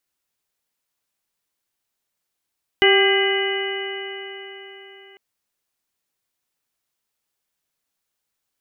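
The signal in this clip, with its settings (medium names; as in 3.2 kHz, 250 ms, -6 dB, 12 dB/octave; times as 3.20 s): stretched partials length 2.35 s, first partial 389 Hz, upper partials -8/-15/-8/-2/-15/-3 dB, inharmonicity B 0.0035, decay 4.09 s, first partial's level -14 dB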